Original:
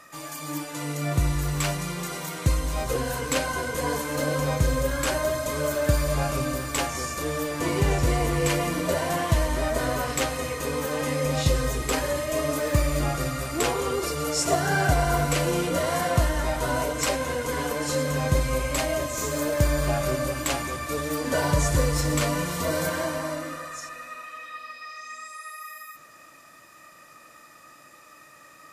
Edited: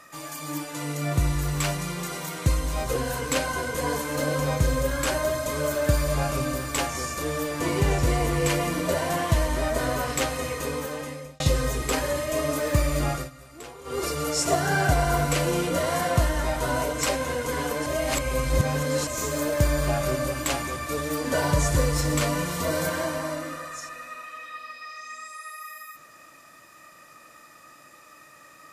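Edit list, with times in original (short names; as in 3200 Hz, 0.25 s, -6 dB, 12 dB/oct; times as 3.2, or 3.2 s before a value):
10.6–11.4 fade out
13.13–14.01 dip -17 dB, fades 0.17 s
17.86–19.07 reverse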